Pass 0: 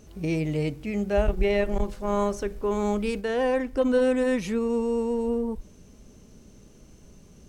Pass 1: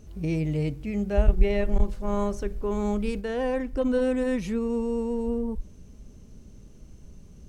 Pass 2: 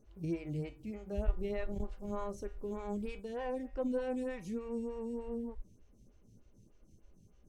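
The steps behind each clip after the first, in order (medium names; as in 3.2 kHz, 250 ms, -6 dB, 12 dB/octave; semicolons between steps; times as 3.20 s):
bass shelf 170 Hz +11.5 dB; trim -4.5 dB
in parallel at -11 dB: crossover distortion -39 dBFS; on the sum: feedback comb 110 Hz, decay 0.42 s, harmonics odd, mix 70%; lamp-driven phase shifter 3.3 Hz; trim -1.5 dB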